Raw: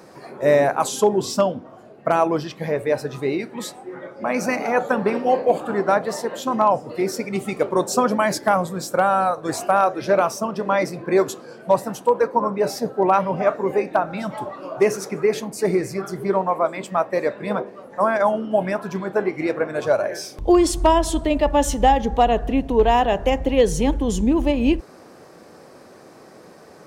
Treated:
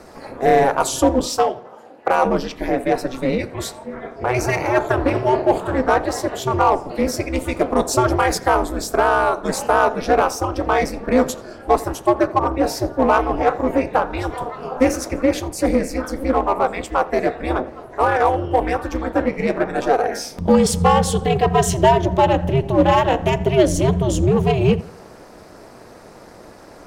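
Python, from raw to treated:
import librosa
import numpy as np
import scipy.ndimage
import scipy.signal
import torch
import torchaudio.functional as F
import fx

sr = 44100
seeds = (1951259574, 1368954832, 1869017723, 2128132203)

p1 = fx.highpass(x, sr, hz=380.0, slope=24, at=(1.26, 2.25))
p2 = p1 * np.sin(2.0 * np.pi * 130.0 * np.arange(len(p1)) / sr)
p3 = np.clip(p2, -10.0 ** (-21.0 / 20.0), 10.0 ** (-21.0 / 20.0))
p4 = p2 + (p3 * librosa.db_to_amplitude(-5.0))
p5 = fx.echo_filtered(p4, sr, ms=84, feedback_pct=46, hz=4800.0, wet_db=-20.5)
y = p5 * librosa.db_to_amplitude(2.5)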